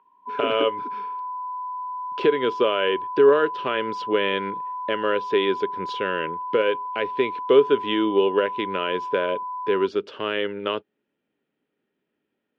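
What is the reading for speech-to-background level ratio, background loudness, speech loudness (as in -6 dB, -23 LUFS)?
8.0 dB, -31.5 LUFS, -23.5 LUFS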